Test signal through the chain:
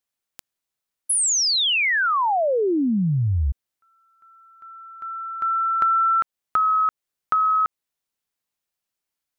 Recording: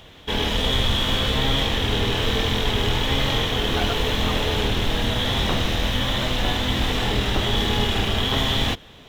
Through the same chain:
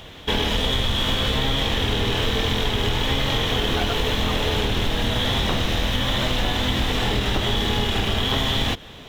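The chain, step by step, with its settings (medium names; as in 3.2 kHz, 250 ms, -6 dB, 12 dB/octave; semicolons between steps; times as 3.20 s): compression, threshold -23 dBFS; trim +5 dB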